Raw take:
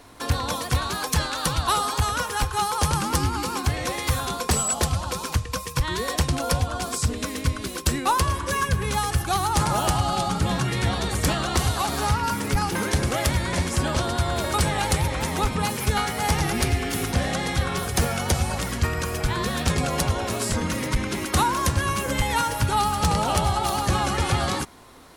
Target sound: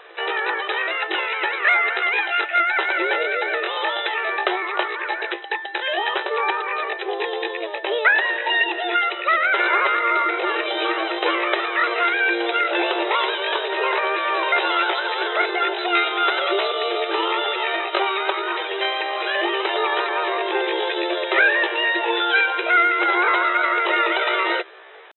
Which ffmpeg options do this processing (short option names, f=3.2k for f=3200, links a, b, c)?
-af "asetrate=74167,aresample=44100,atempo=0.594604,afftfilt=real='re*between(b*sr/4096,330,4000)':imag='im*between(b*sr/4096,330,4000)':win_size=4096:overlap=0.75,volume=6.5dB"